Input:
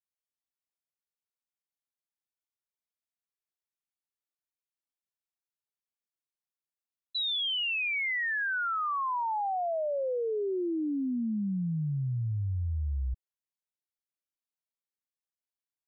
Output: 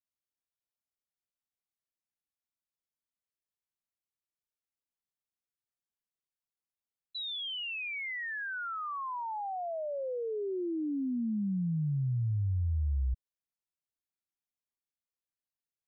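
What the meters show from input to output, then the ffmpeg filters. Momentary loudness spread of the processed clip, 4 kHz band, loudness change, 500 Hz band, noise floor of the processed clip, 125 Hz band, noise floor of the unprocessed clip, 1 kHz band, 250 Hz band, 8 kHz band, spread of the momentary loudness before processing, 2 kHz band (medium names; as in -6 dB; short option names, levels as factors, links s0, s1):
5 LU, -7.0 dB, -3.5 dB, -4.5 dB, under -85 dBFS, +0.5 dB, under -85 dBFS, -6.0 dB, -1.5 dB, no reading, 5 LU, -6.5 dB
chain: -af "lowshelf=f=320:g=8.5,volume=0.447"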